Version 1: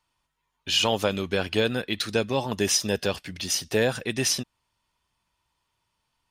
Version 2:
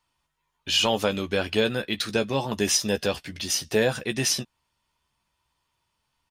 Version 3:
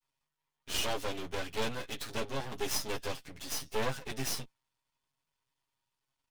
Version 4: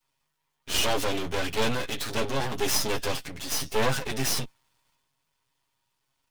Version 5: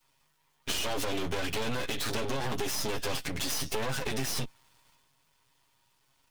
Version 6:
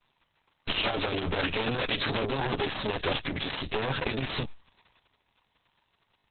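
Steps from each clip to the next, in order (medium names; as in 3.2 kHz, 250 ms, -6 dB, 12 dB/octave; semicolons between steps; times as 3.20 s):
doubling 14 ms -9 dB
comb filter that takes the minimum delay 7.4 ms; half-wave rectifier; trim -4.5 dB
transient shaper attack -1 dB, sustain +6 dB; trim +8 dB
peak limiter -20 dBFS, peak gain reduction 10.5 dB; compression, threshold -34 dBFS, peak gain reduction 9 dB; trim +7 dB
trim +5.5 dB; Opus 6 kbps 48 kHz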